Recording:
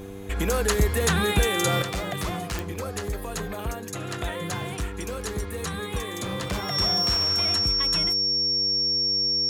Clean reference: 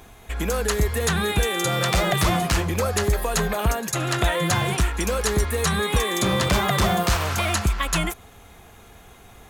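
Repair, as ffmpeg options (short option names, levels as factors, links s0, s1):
-af "adeclick=t=4,bandreject=f=97.9:t=h:w=4,bandreject=f=195.8:t=h:w=4,bandreject=f=293.7:t=h:w=4,bandreject=f=391.6:t=h:w=4,bandreject=f=489.5:t=h:w=4,bandreject=f=5500:w=30,asetnsamples=n=441:p=0,asendcmd='1.82 volume volume 9.5dB',volume=1"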